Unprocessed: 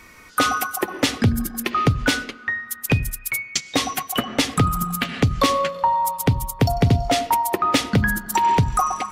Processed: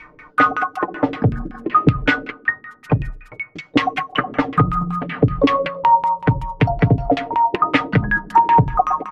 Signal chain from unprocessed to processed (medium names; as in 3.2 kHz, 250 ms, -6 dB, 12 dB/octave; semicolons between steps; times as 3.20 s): comb 6.6 ms, depth 64%; LFO low-pass saw down 5.3 Hz 300–2800 Hz